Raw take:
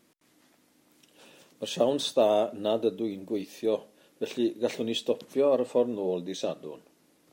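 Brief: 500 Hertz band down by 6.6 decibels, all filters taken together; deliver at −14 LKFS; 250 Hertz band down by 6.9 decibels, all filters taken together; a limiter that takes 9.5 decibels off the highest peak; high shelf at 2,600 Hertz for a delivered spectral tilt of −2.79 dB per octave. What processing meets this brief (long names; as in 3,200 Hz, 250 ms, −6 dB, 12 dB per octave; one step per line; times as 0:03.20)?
parametric band 250 Hz −6.5 dB
parametric band 500 Hz −7 dB
high-shelf EQ 2,600 Hz +8 dB
level +21 dB
brickwall limiter −1 dBFS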